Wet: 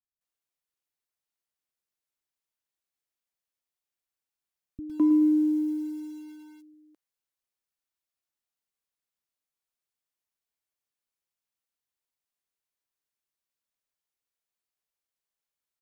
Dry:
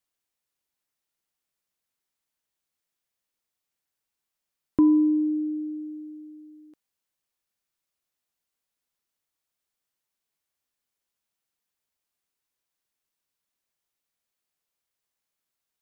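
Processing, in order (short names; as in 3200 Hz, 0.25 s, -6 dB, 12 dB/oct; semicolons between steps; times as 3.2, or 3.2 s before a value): dynamic EQ 260 Hz, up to +4 dB, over -31 dBFS, Q 1.5; bands offset in time lows, highs 0.21 s, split 190 Hz; lo-fi delay 0.108 s, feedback 55%, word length 7-bit, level -11 dB; gain -6.5 dB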